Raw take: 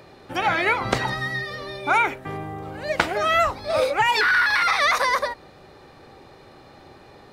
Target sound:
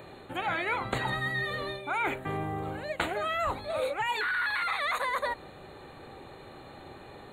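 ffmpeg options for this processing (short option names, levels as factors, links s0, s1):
-af "areverse,acompressor=threshold=0.0398:ratio=6,areverse,asuperstop=centerf=5400:order=12:qfactor=2.4"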